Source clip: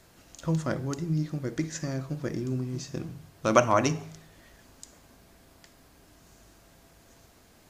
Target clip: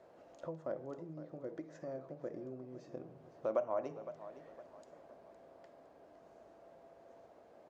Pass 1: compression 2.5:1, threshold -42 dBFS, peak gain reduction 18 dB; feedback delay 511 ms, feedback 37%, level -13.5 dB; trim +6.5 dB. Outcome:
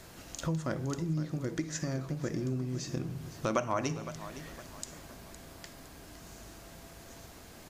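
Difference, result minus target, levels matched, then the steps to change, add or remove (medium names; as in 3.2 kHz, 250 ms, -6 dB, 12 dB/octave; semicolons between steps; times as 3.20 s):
500 Hz band -6.0 dB
add after compression: band-pass filter 580 Hz, Q 2.6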